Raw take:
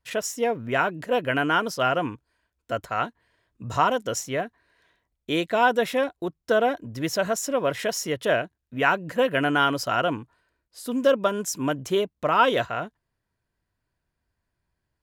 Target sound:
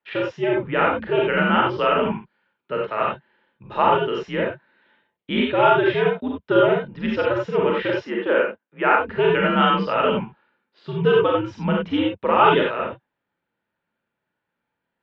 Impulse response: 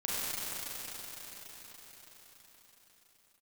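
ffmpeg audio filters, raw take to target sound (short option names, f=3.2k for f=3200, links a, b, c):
-filter_complex "[0:a]highpass=f=240:t=q:w=0.5412,highpass=f=240:t=q:w=1.307,lowpass=f=3.6k:t=q:w=0.5176,lowpass=f=3.6k:t=q:w=0.7071,lowpass=f=3.6k:t=q:w=1.932,afreqshift=-95,asettb=1/sr,asplit=3[a][b][c];[a]atrim=end=8.004[d];[b]atrim=start=8:end=9,asetpts=PTS-STARTPTS,afade=t=in:d=0.004:c=qsin,afade=t=out:st=0.996:d=0.004:c=qsin,acrossover=split=220 2700:gain=0.0631 1 0.224[e][f][g];[e][f][g]amix=inputs=3:normalize=0[h];[c]atrim=start=8.996[i];[d][h]acrossfade=d=0.004:c1=hsin:c2=qsin[j];[j][i]acrossfade=d=0.004:c1=qsin:c2=hsin[k];[1:a]atrim=start_sample=2205,atrim=end_sample=4410[l];[k][l]afir=irnorm=-1:irlink=0,volume=3dB"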